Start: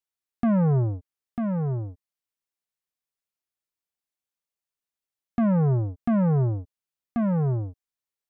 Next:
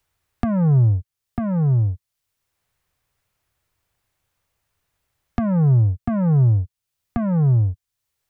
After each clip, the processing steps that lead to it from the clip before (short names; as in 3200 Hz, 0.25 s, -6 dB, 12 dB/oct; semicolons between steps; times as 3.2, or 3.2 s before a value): resonant low shelf 150 Hz +11 dB, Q 1.5; three-band squash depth 70%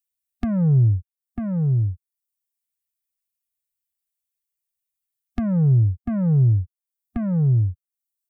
per-bin expansion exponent 1.5; bell 930 Hz -9.5 dB 1.2 oct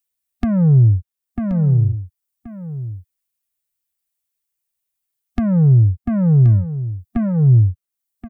echo 1.077 s -12.5 dB; gain +5 dB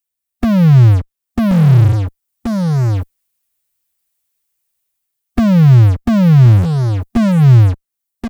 AGC gain up to 10 dB; in parallel at -4 dB: fuzz box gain 41 dB, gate -40 dBFS; on the sum: gain -1.5 dB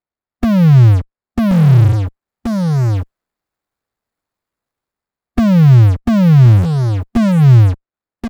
median filter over 15 samples